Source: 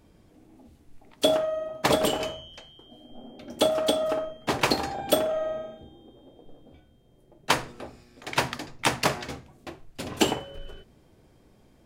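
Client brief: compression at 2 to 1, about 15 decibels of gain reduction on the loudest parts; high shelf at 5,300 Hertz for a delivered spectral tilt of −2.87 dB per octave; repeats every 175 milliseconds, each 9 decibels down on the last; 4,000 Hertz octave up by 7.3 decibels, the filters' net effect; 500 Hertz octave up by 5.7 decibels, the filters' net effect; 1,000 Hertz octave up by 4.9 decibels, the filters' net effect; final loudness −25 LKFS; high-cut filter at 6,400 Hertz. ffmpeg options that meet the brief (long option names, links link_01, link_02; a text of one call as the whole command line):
ffmpeg -i in.wav -af "lowpass=6400,equalizer=frequency=500:width_type=o:gain=6,equalizer=frequency=1000:width_type=o:gain=3.5,equalizer=frequency=4000:width_type=o:gain=6,highshelf=frequency=5300:gain=9,acompressor=threshold=-41dB:ratio=2,aecho=1:1:175|350|525|700:0.355|0.124|0.0435|0.0152,volume=10.5dB" out.wav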